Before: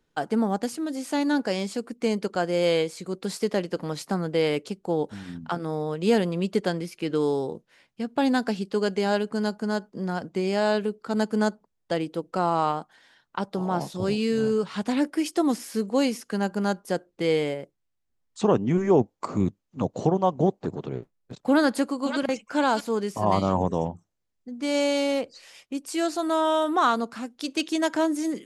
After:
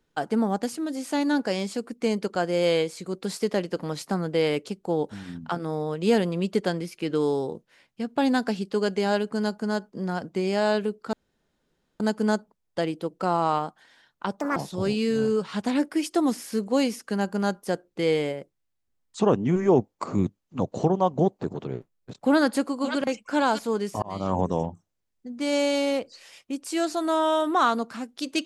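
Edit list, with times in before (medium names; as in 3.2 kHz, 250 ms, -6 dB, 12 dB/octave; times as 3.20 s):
11.13 s: insert room tone 0.87 s
13.53–13.78 s: speed 154%
23.24–23.62 s: fade in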